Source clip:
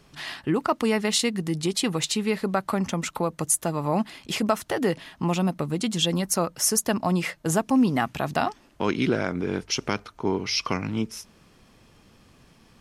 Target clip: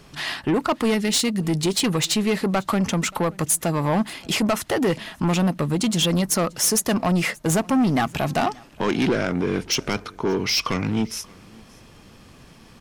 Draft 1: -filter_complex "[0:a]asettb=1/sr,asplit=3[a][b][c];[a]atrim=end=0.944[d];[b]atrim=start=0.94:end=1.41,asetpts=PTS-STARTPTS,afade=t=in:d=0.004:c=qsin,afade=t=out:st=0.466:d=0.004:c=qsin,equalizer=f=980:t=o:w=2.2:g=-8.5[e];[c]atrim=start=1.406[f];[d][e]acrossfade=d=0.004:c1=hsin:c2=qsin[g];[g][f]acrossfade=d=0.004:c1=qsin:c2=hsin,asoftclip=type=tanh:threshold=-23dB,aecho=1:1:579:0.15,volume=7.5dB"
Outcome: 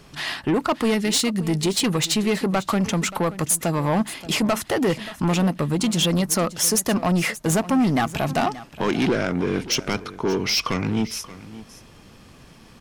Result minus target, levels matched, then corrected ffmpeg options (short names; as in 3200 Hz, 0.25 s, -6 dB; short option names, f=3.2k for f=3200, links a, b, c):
echo-to-direct +8.5 dB
-filter_complex "[0:a]asettb=1/sr,asplit=3[a][b][c];[a]atrim=end=0.944[d];[b]atrim=start=0.94:end=1.41,asetpts=PTS-STARTPTS,afade=t=in:d=0.004:c=qsin,afade=t=out:st=0.466:d=0.004:c=qsin,equalizer=f=980:t=o:w=2.2:g=-8.5[e];[c]atrim=start=1.406[f];[d][e]acrossfade=d=0.004:c1=hsin:c2=qsin[g];[g][f]acrossfade=d=0.004:c1=qsin:c2=hsin,asoftclip=type=tanh:threshold=-23dB,aecho=1:1:579:0.0562,volume=7.5dB"